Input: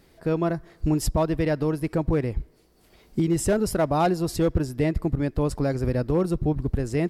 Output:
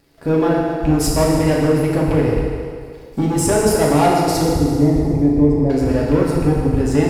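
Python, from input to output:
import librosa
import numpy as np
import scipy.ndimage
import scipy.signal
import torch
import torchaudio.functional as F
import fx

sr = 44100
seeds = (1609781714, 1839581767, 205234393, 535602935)

y = fx.rattle_buzz(x, sr, strikes_db=-20.0, level_db=-26.0)
y = fx.leveller(y, sr, passes=2)
y = fx.moving_average(y, sr, points=31, at=(4.42, 5.7))
y = fx.rev_fdn(y, sr, rt60_s=2.0, lf_ratio=0.7, hf_ratio=0.9, size_ms=21.0, drr_db=-4.0)
y = fx.echo_warbled(y, sr, ms=150, feedback_pct=63, rate_hz=2.8, cents=168, wet_db=-16)
y = y * 10.0 ** (-1.5 / 20.0)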